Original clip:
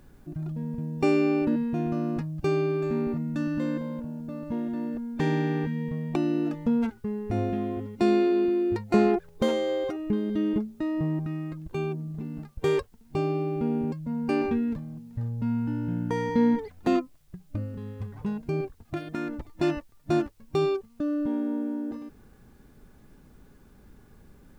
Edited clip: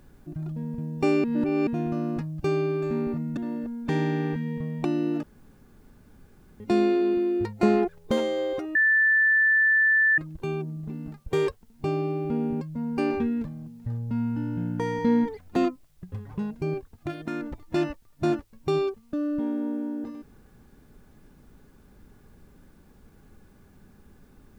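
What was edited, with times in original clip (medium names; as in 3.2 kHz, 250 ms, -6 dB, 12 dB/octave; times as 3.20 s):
1.24–1.67 s: reverse
3.37–4.68 s: delete
6.54–7.91 s: room tone
10.06–11.49 s: bleep 1.76 kHz -17 dBFS
17.43–17.99 s: delete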